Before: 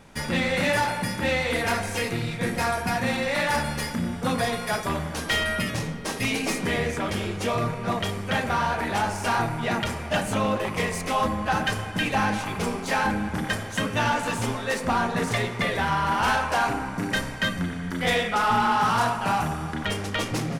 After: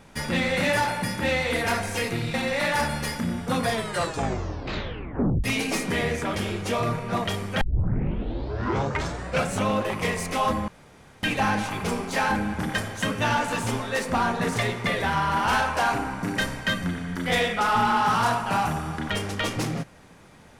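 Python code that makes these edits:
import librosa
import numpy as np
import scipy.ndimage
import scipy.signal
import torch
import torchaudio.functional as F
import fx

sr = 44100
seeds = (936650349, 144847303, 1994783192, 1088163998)

y = fx.edit(x, sr, fx.cut(start_s=2.34, length_s=0.75),
    fx.tape_stop(start_s=4.44, length_s=1.75),
    fx.tape_start(start_s=8.36, length_s=2.07),
    fx.room_tone_fill(start_s=11.43, length_s=0.55), tone=tone)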